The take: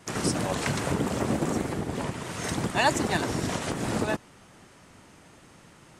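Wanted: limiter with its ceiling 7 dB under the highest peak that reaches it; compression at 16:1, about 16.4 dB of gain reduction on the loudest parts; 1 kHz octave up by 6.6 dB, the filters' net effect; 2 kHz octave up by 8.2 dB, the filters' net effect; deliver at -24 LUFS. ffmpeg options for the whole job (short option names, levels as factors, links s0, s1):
-af "equalizer=f=1000:t=o:g=6.5,equalizer=f=2000:t=o:g=8,acompressor=threshold=0.0447:ratio=16,volume=2.82,alimiter=limit=0.211:level=0:latency=1"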